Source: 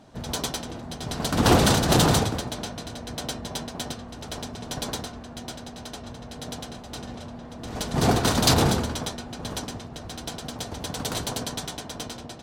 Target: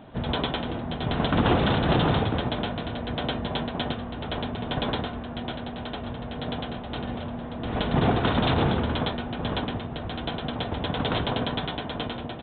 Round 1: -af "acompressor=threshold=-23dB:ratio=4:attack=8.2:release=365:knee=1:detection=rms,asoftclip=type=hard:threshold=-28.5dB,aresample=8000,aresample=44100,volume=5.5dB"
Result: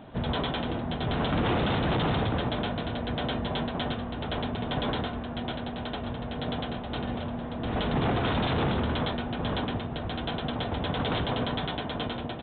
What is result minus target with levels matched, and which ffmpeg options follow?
hard clip: distortion +30 dB
-af "acompressor=threshold=-23dB:ratio=4:attack=8.2:release=365:knee=1:detection=rms,asoftclip=type=hard:threshold=-16.5dB,aresample=8000,aresample=44100,volume=5.5dB"

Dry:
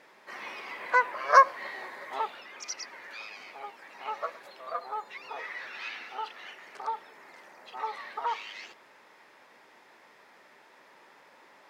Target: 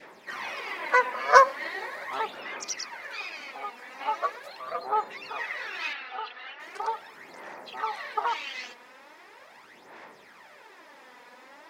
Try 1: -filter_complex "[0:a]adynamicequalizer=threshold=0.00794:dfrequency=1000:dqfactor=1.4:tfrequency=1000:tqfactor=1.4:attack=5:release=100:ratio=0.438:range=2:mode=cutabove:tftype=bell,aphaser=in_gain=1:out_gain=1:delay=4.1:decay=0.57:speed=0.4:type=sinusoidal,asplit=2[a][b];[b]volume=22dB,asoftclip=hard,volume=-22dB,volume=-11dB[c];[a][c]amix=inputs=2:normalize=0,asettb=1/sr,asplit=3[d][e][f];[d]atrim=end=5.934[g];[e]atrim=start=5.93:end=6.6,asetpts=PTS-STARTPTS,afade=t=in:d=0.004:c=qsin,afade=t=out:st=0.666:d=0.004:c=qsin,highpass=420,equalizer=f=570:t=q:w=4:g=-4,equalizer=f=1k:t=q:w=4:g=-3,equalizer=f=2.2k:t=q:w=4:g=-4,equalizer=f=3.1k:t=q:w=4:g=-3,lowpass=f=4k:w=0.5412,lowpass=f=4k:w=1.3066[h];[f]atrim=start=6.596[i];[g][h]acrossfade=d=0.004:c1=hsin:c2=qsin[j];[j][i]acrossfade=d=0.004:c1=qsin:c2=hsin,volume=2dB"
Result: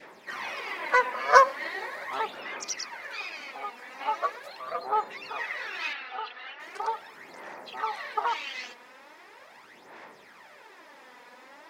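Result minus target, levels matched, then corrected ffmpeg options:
overloaded stage: distortion +9 dB
-filter_complex "[0:a]adynamicequalizer=threshold=0.00794:dfrequency=1000:dqfactor=1.4:tfrequency=1000:tqfactor=1.4:attack=5:release=100:ratio=0.438:range=2:mode=cutabove:tftype=bell,aphaser=in_gain=1:out_gain=1:delay=4.1:decay=0.57:speed=0.4:type=sinusoidal,asplit=2[a][b];[b]volume=13.5dB,asoftclip=hard,volume=-13.5dB,volume=-11dB[c];[a][c]amix=inputs=2:normalize=0,asettb=1/sr,asplit=3[d][e][f];[d]atrim=end=5.934[g];[e]atrim=start=5.93:end=6.6,asetpts=PTS-STARTPTS,afade=t=in:d=0.004:c=qsin,afade=t=out:st=0.666:d=0.004:c=qsin,highpass=420,equalizer=f=570:t=q:w=4:g=-4,equalizer=f=1k:t=q:w=4:g=-3,equalizer=f=2.2k:t=q:w=4:g=-4,equalizer=f=3.1k:t=q:w=4:g=-3,lowpass=f=4k:w=0.5412,lowpass=f=4k:w=1.3066[h];[f]atrim=start=6.596[i];[g][h]acrossfade=d=0.004:c1=hsin:c2=qsin[j];[j][i]acrossfade=d=0.004:c1=qsin:c2=hsin,volume=2dB"

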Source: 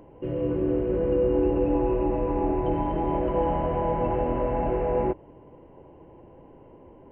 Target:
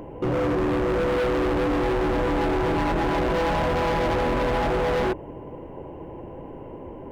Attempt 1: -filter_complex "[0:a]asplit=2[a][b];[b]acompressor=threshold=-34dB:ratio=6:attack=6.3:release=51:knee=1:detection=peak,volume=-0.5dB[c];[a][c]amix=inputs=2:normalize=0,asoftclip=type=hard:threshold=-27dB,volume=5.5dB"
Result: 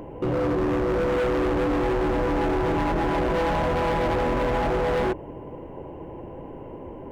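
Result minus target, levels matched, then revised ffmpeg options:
compressor: peak gain reduction +7 dB
-filter_complex "[0:a]asplit=2[a][b];[b]acompressor=threshold=-25.5dB:ratio=6:attack=6.3:release=51:knee=1:detection=peak,volume=-0.5dB[c];[a][c]amix=inputs=2:normalize=0,asoftclip=type=hard:threshold=-27dB,volume=5.5dB"

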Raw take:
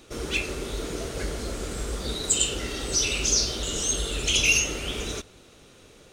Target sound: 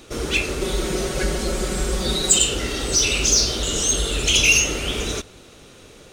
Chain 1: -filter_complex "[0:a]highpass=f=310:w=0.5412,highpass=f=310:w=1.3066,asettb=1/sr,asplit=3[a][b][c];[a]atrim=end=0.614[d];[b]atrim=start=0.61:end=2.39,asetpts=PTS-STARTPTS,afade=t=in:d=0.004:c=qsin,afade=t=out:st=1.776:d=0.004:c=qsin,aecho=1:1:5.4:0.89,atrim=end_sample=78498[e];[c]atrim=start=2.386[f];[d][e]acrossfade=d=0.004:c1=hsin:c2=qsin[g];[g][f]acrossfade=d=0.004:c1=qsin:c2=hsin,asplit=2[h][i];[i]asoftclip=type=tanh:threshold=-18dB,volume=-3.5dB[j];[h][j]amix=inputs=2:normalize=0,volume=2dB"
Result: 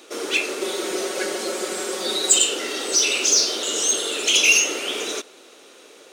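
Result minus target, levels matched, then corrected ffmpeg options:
250 Hz band -4.0 dB
-filter_complex "[0:a]asettb=1/sr,asplit=3[a][b][c];[a]atrim=end=0.614[d];[b]atrim=start=0.61:end=2.39,asetpts=PTS-STARTPTS,afade=t=in:d=0.004:c=qsin,afade=t=out:st=1.776:d=0.004:c=qsin,aecho=1:1:5.4:0.89,atrim=end_sample=78498[e];[c]atrim=start=2.386[f];[d][e]acrossfade=d=0.004:c1=hsin:c2=qsin[g];[g][f]acrossfade=d=0.004:c1=qsin:c2=hsin,asplit=2[h][i];[i]asoftclip=type=tanh:threshold=-18dB,volume=-3.5dB[j];[h][j]amix=inputs=2:normalize=0,volume=2dB"

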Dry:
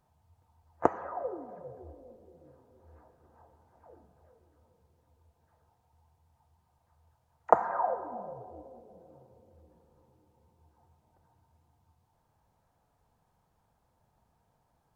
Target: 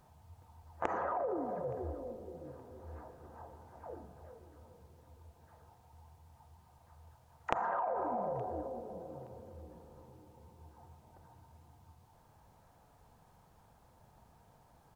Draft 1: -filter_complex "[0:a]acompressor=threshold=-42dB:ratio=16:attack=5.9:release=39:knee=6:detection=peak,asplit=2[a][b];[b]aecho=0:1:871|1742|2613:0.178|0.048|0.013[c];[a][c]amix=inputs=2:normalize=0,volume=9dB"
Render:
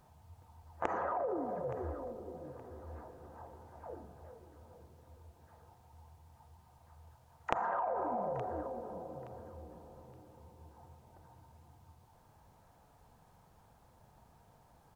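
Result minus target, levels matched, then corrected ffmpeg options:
echo-to-direct +10 dB
-filter_complex "[0:a]acompressor=threshold=-42dB:ratio=16:attack=5.9:release=39:knee=6:detection=peak,asplit=2[a][b];[b]aecho=0:1:871|1742:0.0562|0.0152[c];[a][c]amix=inputs=2:normalize=0,volume=9dB"

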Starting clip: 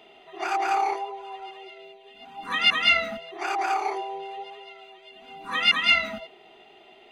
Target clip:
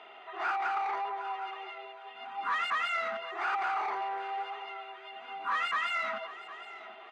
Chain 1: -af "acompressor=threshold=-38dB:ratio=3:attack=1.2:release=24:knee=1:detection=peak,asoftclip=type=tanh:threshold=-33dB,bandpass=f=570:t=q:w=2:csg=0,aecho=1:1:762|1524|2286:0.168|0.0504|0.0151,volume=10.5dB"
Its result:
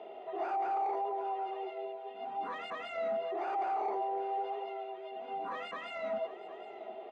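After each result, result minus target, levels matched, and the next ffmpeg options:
500 Hz band +10.5 dB; compressor: peak gain reduction +5.5 dB
-af "acompressor=threshold=-38dB:ratio=3:attack=1.2:release=24:knee=1:detection=peak,asoftclip=type=tanh:threshold=-33dB,bandpass=f=1.3k:t=q:w=2:csg=0,aecho=1:1:762|1524|2286:0.168|0.0504|0.0151,volume=10.5dB"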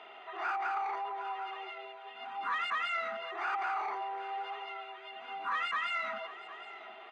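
compressor: peak gain reduction +5.5 dB
-af "acompressor=threshold=-30dB:ratio=3:attack=1.2:release=24:knee=1:detection=peak,asoftclip=type=tanh:threshold=-33dB,bandpass=f=1.3k:t=q:w=2:csg=0,aecho=1:1:762|1524|2286:0.168|0.0504|0.0151,volume=10.5dB"

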